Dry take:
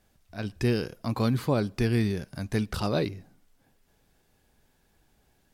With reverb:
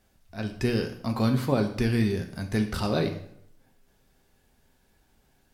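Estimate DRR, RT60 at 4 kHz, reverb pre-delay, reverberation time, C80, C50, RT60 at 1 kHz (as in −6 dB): 4.0 dB, 0.55 s, 4 ms, 0.70 s, 13.5 dB, 10.5 dB, 0.65 s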